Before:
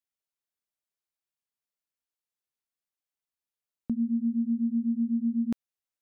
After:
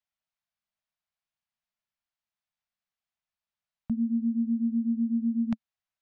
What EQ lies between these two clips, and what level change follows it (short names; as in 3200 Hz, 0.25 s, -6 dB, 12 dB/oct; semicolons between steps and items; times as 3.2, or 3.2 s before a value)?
elliptic band-stop 220–620 Hz; air absorption 140 m; +4.5 dB